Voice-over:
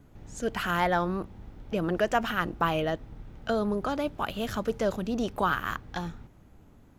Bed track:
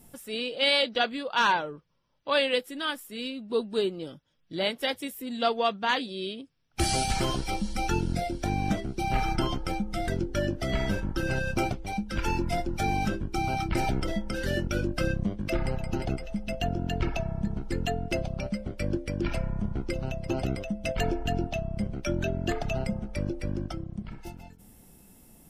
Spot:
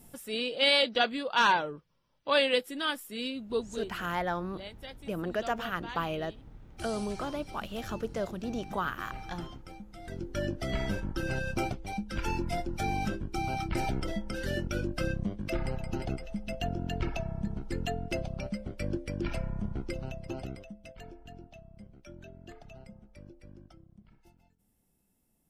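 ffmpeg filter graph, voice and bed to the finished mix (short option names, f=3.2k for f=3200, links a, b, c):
-filter_complex "[0:a]adelay=3350,volume=-6dB[a];[1:a]volume=12dB,afade=t=out:st=3.38:d=0.51:silence=0.158489,afade=t=in:st=10.01:d=0.44:silence=0.237137,afade=t=out:st=19.78:d=1.14:silence=0.158489[b];[a][b]amix=inputs=2:normalize=0"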